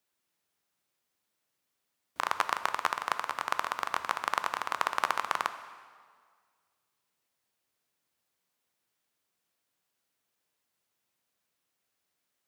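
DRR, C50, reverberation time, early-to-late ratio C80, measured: 10.0 dB, 11.5 dB, 1.8 s, 12.5 dB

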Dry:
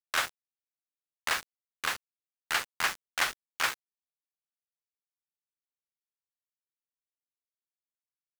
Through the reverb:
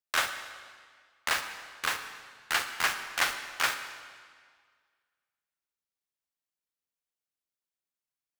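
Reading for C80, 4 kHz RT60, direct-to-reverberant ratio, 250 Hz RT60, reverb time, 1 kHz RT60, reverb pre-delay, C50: 10.0 dB, 1.6 s, 7.5 dB, 1.8 s, 1.8 s, 1.8 s, 37 ms, 8.5 dB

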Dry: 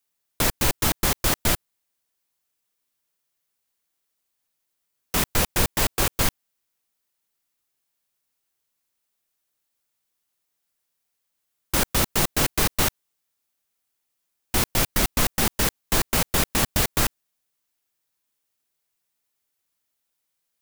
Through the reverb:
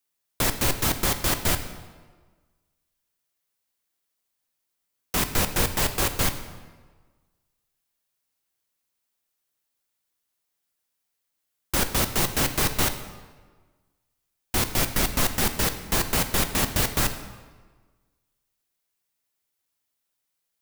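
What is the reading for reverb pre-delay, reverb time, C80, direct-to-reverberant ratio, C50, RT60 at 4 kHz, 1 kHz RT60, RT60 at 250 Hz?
3 ms, 1.4 s, 12.0 dB, 7.5 dB, 10.5 dB, 1.0 s, 1.4 s, 1.5 s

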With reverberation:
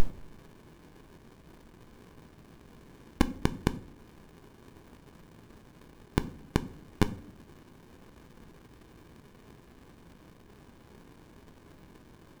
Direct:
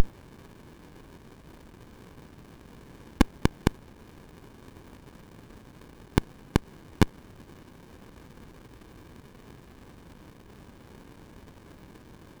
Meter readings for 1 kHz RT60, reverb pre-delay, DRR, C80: 0.45 s, 3 ms, 11.5 dB, 22.0 dB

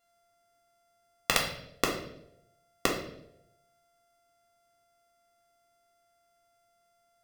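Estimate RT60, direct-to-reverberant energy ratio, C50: 0.80 s, −1.0 dB, 6.0 dB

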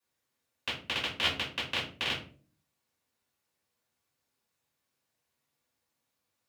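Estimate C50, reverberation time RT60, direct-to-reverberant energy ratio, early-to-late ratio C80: 7.0 dB, 0.45 s, −8.0 dB, 13.0 dB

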